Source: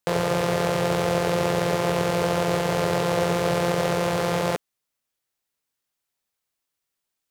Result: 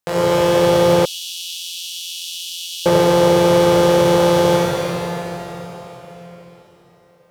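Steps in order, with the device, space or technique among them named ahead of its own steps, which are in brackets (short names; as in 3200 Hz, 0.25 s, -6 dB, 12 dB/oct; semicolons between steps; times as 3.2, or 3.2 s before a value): cathedral (reverb RT60 4.3 s, pre-delay 17 ms, DRR -7 dB); 1.05–2.86 steep high-pass 2700 Hz 96 dB/oct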